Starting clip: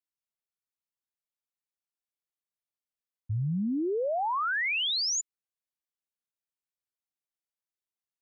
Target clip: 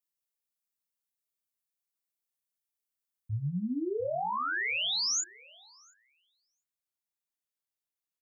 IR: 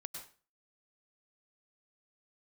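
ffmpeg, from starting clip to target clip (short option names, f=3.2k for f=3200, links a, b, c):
-filter_complex "[0:a]asetnsamples=n=441:p=0,asendcmd='3.34 highshelf g 6',highshelf=f=6.2k:g=11.5,asplit=2[a][b];[b]adelay=28,volume=-3.5dB[c];[a][c]amix=inputs=2:normalize=0,asplit=2[d][e];[e]adelay=700,lowpass=f=1.9k:p=1,volume=-19.5dB,asplit=2[f][g];[g]adelay=700,lowpass=f=1.9k:p=1,volume=0.21[h];[d][f][h]amix=inputs=3:normalize=0,volume=-5dB"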